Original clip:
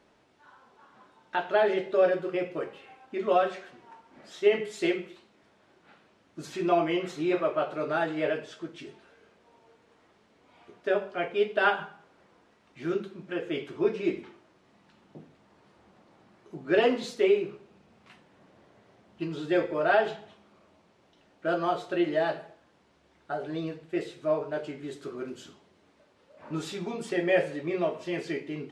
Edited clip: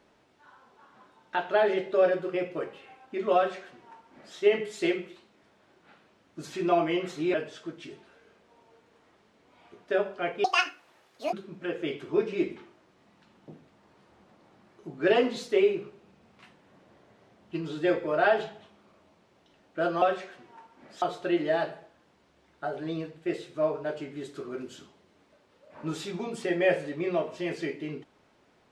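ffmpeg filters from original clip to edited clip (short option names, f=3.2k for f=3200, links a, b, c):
-filter_complex "[0:a]asplit=6[a][b][c][d][e][f];[a]atrim=end=7.342[g];[b]atrim=start=8.298:end=11.404[h];[c]atrim=start=11.4:end=13,asetpts=PTS-STARTPTS,asetrate=79380,aresample=44100[i];[d]atrim=start=12.996:end=21.692[j];[e]atrim=start=3.358:end=4.362[k];[f]atrim=start=21.688[l];[g][h]acrossfade=d=0.004:c1=hsin:c2=hsin[m];[m][i]acrossfade=d=0.004:c1=hsin:c2=hsin[n];[n][j]acrossfade=d=0.004:c1=hsin:c2=hsin[o];[o][k]acrossfade=d=0.004:c1=hsin:c2=hsin[p];[p][l]acrossfade=d=0.004:c1=hsin:c2=hsin"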